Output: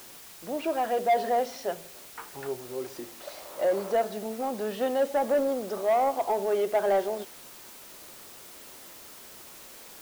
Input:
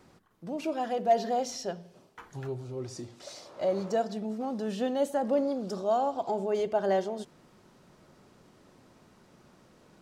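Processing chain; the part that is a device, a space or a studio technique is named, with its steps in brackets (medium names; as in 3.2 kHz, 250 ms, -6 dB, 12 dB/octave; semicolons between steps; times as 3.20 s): tape answering machine (band-pass 370–2800 Hz; saturation -23.5 dBFS, distortion -14 dB; wow and flutter; white noise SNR 18 dB); trim +6 dB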